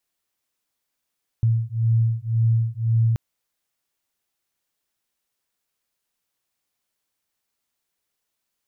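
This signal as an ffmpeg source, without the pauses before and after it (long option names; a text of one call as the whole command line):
ffmpeg -f lavfi -i "aevalsrc='0.0944*(sin(2*PI*113*t)+sin(2*PI*114.9*t))':duration=1.73:sample_rate=44100" out.wav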